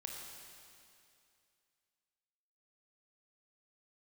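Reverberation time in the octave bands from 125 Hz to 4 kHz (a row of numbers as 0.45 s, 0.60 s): 2.5 s, 2.5 s, 2.5 s, 2.5 s, 2.5 s, 2.5 s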